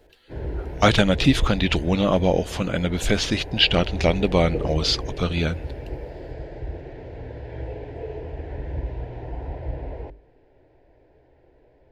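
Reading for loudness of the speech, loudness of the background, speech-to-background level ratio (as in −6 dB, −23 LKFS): −21.5 LKFS, −34.0 LKFS, 12.5 dB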